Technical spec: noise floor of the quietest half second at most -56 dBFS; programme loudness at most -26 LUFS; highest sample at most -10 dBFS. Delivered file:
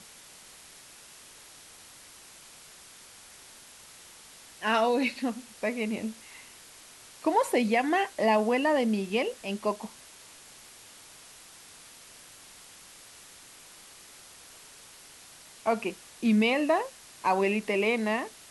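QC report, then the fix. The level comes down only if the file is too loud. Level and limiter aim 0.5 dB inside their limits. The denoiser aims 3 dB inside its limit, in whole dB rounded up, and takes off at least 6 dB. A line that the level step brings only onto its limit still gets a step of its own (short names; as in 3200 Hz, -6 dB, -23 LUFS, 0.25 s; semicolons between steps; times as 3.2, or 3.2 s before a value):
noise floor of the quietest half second -51 dBFS: fail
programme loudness -28.0 LUFS: OK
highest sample -13.0 dBFS: OK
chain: denoiser 8 dB, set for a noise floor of -51 dBFS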